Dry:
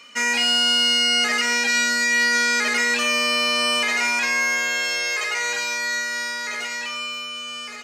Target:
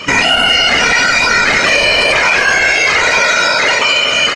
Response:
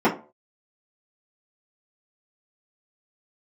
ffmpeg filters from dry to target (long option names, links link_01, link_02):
-filter_complex "[0:a]acompressor=threshold=-25dB:ratio=2.5,asplit=2[link_01][link_02];[1:a]atrim=start_sample=2205,lowshelf=frequency=270:gain=10[link_03];[link_02][link_03]afir=irnorm=-1:irlink=0,volume=-36.5dB[link_04];[link_01][link_04]amix=inputs=2:normalize=0,asoftclip=type=tanh:threshold=-22.5dB,lowpass=5900,tiltshelf=frequency=700:gain=4.5,asplit=2[link_05][link_06];[link_06]aecho=0:1:53|160|745:0.596|0.355|0.266[link_07];[link_05][link_07]amix=inputs=2:normalize=0,atempo=1.8,afftfilt=real='hypot(re,im)*cos(2*PI*random(0))':imag='hypot(re,im)*sin(2*PI*random(1))':win_size=512:overlap=0.75,alimiter=level_in=31dB:limit=-1dB:release=50:level=0:latency=1,volume=-1dB"